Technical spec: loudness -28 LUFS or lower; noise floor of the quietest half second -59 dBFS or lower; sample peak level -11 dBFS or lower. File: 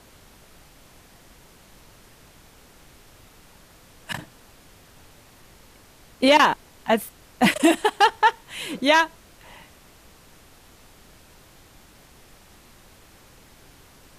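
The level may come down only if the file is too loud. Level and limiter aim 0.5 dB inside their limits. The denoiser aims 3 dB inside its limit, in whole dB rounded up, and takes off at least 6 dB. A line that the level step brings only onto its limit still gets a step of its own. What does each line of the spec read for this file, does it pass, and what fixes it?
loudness -21.0 LUFS: fail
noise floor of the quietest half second -51 dBFS: fail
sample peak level -4.5 dBFS: fail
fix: denoiser 6 dB, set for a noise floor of -51 dBFS; gain -7.5 dB

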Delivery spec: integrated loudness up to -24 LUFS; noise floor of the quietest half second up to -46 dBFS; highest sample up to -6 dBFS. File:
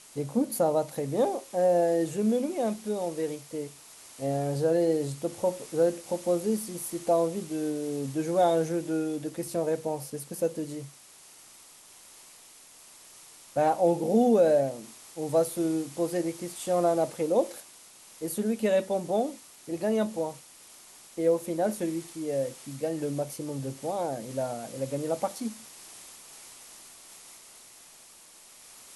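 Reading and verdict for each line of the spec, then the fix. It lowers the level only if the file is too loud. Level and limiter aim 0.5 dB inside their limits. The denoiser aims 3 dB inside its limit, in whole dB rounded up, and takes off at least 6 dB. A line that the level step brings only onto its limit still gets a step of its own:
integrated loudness -28.5 LUFS: OK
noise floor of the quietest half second -53 dBFS: OK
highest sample -12.0 dBFS: OK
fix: none

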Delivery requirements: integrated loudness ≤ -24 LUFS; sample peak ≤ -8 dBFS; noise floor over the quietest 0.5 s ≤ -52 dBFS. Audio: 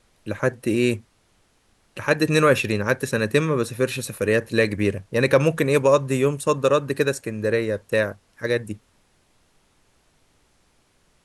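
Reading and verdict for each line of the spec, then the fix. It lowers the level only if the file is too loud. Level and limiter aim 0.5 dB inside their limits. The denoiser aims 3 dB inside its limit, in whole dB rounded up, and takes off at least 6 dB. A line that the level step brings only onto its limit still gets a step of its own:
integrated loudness -22.0 LUFS: fail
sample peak -5.0 dBFS: fail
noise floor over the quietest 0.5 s -62 dBFS: OK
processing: gain -2.5 dB; limiter -8.5 dBFS

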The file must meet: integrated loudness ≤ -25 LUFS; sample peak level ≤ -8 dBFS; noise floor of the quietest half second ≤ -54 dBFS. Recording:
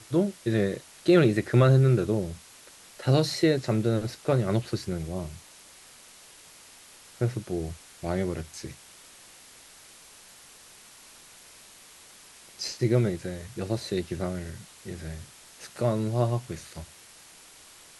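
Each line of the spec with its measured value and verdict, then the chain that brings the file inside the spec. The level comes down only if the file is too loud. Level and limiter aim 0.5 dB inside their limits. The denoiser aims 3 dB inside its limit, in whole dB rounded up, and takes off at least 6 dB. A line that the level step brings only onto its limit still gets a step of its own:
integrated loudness -27.0 LUFS: OK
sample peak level -7.5 dBFS: fail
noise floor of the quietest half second -51 dBFS: fail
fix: denoiser 6 dB, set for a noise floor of -51 dBFS; limiter -8.5 dBFS

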